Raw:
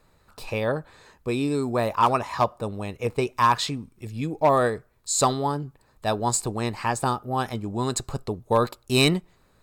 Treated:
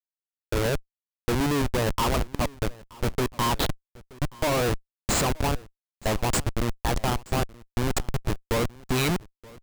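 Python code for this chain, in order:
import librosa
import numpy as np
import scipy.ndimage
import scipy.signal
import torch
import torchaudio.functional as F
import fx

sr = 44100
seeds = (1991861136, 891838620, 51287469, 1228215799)

y = fx.schmitt(x, sr, flips_db=-23.0)
y = y + 10.0 ** (-22.5 / 20.0) * np.pad(y, (int(926 * sr / 1000.0), 0))[:len(y)]
y = F.gain(torch.from_numpy(y), 2.5).numpy()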